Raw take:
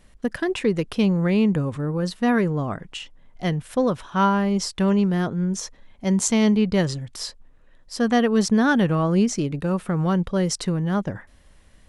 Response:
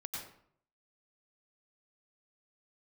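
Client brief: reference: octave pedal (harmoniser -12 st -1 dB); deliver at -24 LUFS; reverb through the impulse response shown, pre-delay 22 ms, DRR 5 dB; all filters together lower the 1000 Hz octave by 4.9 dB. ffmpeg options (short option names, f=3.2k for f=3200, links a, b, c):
-filter_complex "[0:a]equalizer=f=1k:t=o:g=-6.5,asplit=2[a][b];[1:a]atrim=start_sample=2205,adelay=22[c];[b][c]afir=irnorm=-1:irlink=0,volume=-4.5dB[d];[a][d]amix=inputs=2:normalize=0,asplit=2[e][f];[f]asetrate=22050,aresample=44100,atempo=2,volume=-1dB[g];[e][g]amix=inputs=2:normalize=0,volume=-4.5dB"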